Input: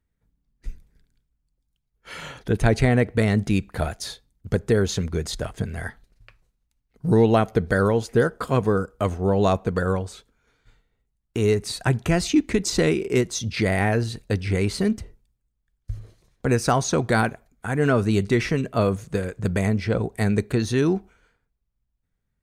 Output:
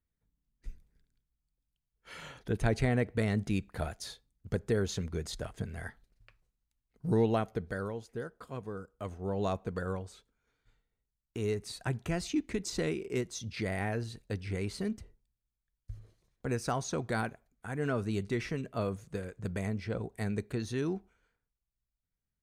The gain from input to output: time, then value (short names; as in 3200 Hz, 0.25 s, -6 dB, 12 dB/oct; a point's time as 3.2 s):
7.23 s -10 dB
8.1 s -20 dB
8.7 s -20 dB
9.42 s -12.5 dB